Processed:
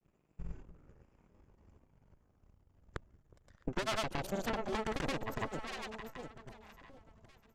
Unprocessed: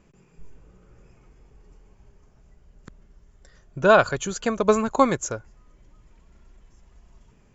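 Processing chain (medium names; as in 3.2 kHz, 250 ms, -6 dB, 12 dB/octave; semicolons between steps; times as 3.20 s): overload inside the chain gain 20 dB; treble shelf 2.5 kHz -9.5 dB; band-stop 420 Hz, Q 12; Chebyshev shaper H 5 -34 dB, 7 -15 dB, 8 -7 dB, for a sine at -13 dBFS; echo whose repeats swap between lows and highs 371 ms, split 820 Hz, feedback 53%, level -14 dB; granulator, pitch spread up and down by 0 st; compression 10:1, threshold -35 dBFS, peak gain reduction 16.5 dB; trim +2.5 dB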